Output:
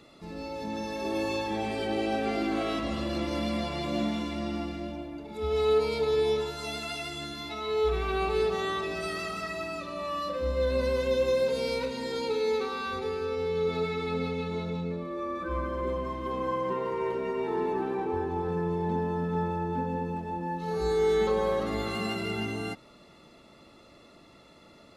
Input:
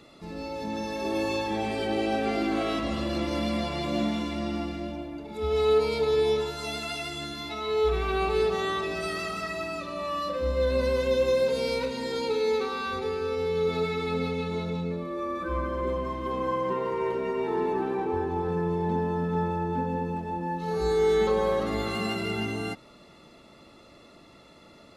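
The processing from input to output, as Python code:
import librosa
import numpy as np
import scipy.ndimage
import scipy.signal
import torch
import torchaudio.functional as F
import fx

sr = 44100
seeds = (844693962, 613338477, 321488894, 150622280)

y = fx.high_shelf(x, sr, hz=8300.0, db=-6.0, at=(13.25, 15.51))
y = y * librosa.db_to_amplitude(-2.0)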